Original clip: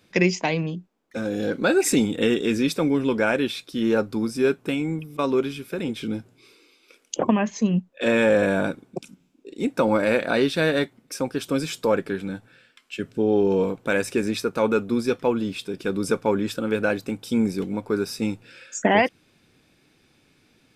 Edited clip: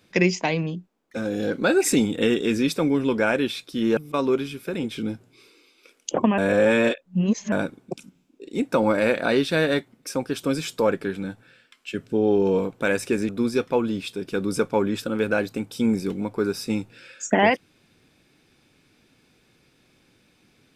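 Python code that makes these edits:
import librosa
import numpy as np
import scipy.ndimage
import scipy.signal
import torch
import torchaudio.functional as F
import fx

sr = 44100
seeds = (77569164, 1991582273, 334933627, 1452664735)

y = fx.edit(x, sr, fx.cut(start_s=3.97, length_s=1.05),
    fx.reverse_span(start_s=7.43, length_s=1.14),
    fx.cut(start_s=14.34, length_s=0.47), tone=tone)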